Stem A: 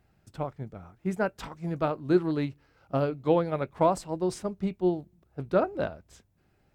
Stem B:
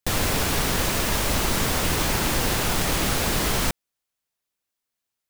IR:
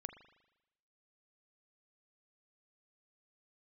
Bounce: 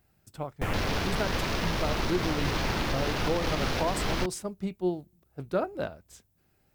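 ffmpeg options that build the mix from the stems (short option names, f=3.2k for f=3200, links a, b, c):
-filter_complex "[0:a]aemphasis=mode=production:type=50kf,volume=-3dB[a];[1:a]afwtdn=0.0316,adelay=550,volume=-4dB[b];[a][b]amix=inputs=2:normalize=0,alimiter=limit=-17.5dB:level=0:latency=1:release=92"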